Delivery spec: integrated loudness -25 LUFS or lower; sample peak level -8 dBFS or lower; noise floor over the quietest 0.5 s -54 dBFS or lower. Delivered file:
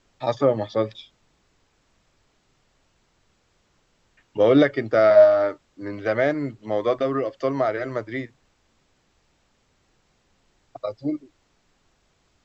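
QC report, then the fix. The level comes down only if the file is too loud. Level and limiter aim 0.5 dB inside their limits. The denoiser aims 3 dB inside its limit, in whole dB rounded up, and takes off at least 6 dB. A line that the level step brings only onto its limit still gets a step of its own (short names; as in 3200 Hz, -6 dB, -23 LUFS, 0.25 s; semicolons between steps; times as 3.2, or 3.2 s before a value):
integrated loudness -21.5 LUFS: fail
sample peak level -4.5 dBFS: fail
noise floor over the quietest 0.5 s -66 dBFS: OK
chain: gain -4 dB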